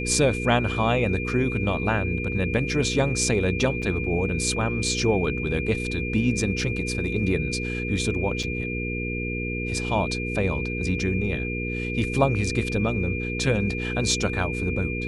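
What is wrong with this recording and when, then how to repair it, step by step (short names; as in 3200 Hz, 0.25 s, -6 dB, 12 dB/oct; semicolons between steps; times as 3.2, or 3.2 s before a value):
hum 60 Hz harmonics 8 -30 dBFS
tone 2400 Hz -31 dBFS
3.82–3.83 gap 5.1 ms
8.43–8.44 gap 5.1 ms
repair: notch 2400 Hz, Q 30; de-hum 60 Hz, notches 8; interpolate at 3.82, 5.1 ms; interpolate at 8.43, 5.1 ms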